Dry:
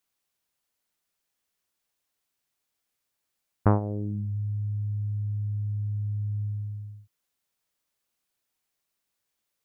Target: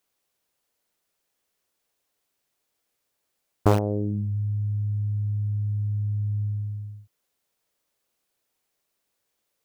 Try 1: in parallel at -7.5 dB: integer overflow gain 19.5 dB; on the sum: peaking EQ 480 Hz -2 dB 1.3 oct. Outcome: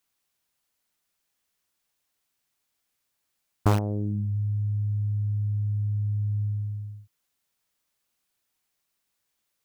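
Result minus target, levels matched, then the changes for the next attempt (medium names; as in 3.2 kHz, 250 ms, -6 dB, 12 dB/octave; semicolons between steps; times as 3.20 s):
500 Hz band -6.0 dB
change: peaking EQ 480 Hz +6 dB 1.3 oct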